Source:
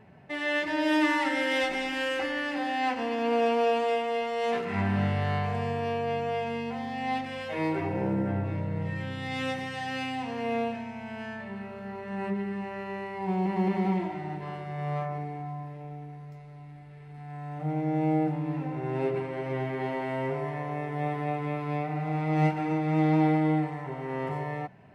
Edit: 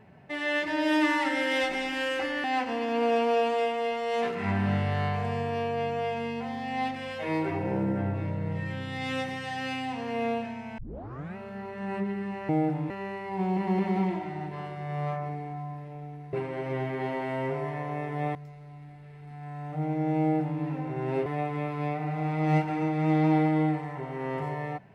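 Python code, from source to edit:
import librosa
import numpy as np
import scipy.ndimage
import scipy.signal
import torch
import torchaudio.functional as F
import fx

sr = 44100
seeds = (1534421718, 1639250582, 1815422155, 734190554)

y = fx.edit(x, sr, fx.cut(start_s=2.44, length_s=0.3),
    fx.tape_start(start_s=11.08, length_s=0.58),
    fx.duplicate(start_s=18.07, length_s=0.41, to_s=12.79),
    fx.move(start_s=19.13, length_s=2.02, to_s=16.22), tone=tone)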